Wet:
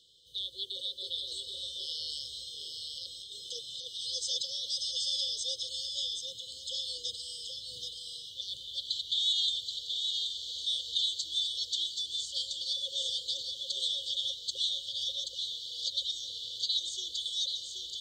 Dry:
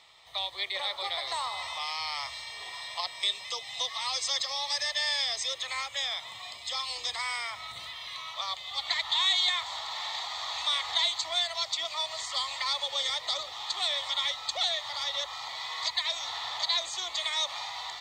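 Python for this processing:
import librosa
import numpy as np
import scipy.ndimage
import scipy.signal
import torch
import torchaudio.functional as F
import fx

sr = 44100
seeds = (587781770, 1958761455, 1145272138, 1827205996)

y = fx.over_compress(x, sr, threshold_db=-34.0, ratio=-0.5, at=(1.4, 4.05))
y = fx.brickwall_bandstop(y, sr, low_hz=550.0, high_hz=2900.0)
y = y + 10.0 ** (-5.0 / 20.0) * np.pad(y, (int(778 * sr / 1000.0), 0))[:len(y)]
y = y * librosa.db_to_amplitude(-3.0)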